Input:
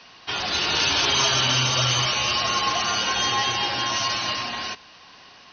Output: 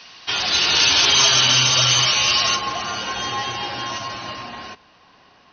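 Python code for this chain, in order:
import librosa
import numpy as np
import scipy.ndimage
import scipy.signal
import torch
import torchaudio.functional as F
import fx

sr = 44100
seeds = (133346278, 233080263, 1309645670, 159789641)

y = fx.high_shelf(x, sr, hz=2000.0, db=fx.steps((0.0, 8.5), (2.55, -5.5), (3.97, -11.0)))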